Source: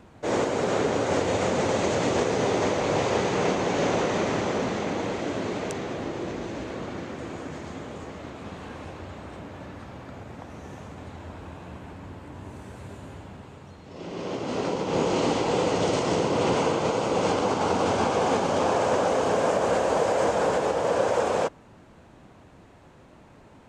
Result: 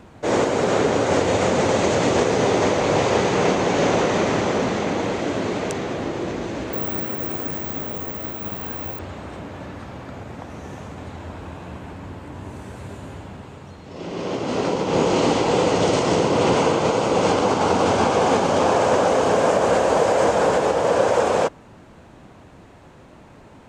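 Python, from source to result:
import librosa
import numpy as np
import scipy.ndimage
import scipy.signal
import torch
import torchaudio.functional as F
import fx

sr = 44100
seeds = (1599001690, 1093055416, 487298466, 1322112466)

y = fx.resample_bad(x, sr, factor=2, down='filtered', up='zero_stuff', at=(6.73, 8.99))
y = y * librosa.db_to_amplitude(5.5)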